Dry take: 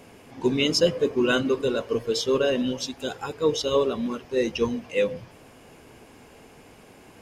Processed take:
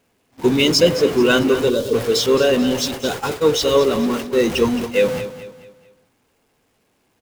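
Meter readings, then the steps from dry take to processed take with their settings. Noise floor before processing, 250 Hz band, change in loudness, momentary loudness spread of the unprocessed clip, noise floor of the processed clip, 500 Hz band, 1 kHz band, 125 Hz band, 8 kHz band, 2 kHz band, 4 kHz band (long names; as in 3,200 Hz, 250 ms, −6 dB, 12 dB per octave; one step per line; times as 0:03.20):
−51 dBFS, +8.0 dB, +7.5 dB, 8 LU, −65 dBFS, +7.5 dB, +8.0 dB, +8.0 dB, +9.0 dB, +7.5 dB, +8.0 dB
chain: converter with a step at zero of −28.5 dBFS
noise gate −30 dBFS, range −37 dB
time-frequency box erased 0:01.70–0:01.93, 640–3,100 Hz
on a send: repeating echo 218 ms, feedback 39%, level −12.5 dB
on the sum: level +5.5 dB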